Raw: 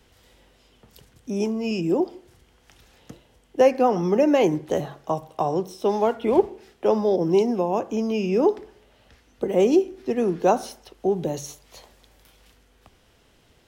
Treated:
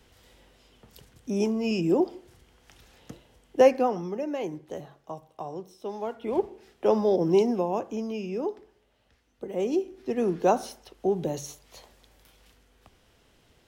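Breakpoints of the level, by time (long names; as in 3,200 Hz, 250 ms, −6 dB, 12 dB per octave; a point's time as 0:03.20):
0:03.67 −1 dB
0:04.16 −13 dB
0:05.93 −13 dB
0:06.90 −2 dB
0:07.46 −2 dB
0:08.49 −11.5 dB
0:09.44 −11.5 dB
0:10.25 −3 dB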